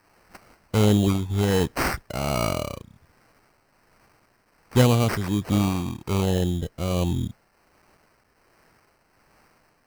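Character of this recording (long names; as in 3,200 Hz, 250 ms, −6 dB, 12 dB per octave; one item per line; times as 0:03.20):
a quantiser's noise floor 10 bits, dither triangular
tremolo triangle 1.3 Hz, depth 55%
aliases and images of a low sample rate 3,500 Hz, jitter 0%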